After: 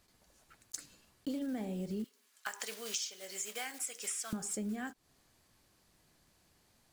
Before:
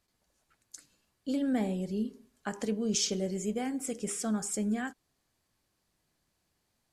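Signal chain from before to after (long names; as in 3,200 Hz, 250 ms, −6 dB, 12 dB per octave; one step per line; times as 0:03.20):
one scale factor per block 5 bits
0:02.04–0:04.33: high-pass filter 1,300 Hz 12 dB per octave
downward compressor 8 to 1, threshold −44 dBFS, peak gain reduction 18.5 dB
level +8 dB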